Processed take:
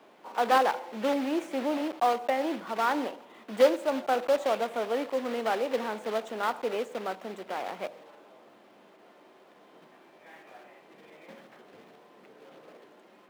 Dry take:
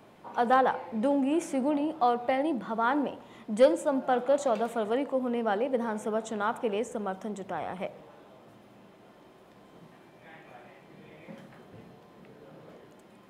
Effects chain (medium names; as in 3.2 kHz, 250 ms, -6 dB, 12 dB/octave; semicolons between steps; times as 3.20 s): block-companded coder 3-bit; three-band isolator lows -23 dB, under 240 Hz, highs -13 dB, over 3.9 kHz